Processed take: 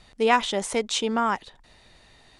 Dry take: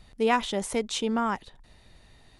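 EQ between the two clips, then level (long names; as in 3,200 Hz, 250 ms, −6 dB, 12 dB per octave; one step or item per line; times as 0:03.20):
low-pass filter 9,600 Hz 24 dB per octave
low-shelf EQ 260 Hz −9 dB
+5.0 dB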